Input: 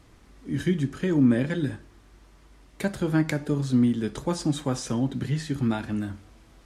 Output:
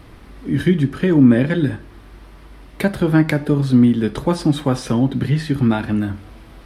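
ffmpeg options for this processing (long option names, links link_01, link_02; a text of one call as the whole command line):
ffmpeg -i in.wav -filter_complex "[0:a]equalizer=frequency=6900:width_type=o:width=0.71:gain=-13,asplit=2[link_01][link_02];[link_02]acompressor=threshold=-38dB:ratio=6,volume=-3dB[link_03];[link_01][link_03]amix=inputs=2:normalize=0,volume=8dB" out.wav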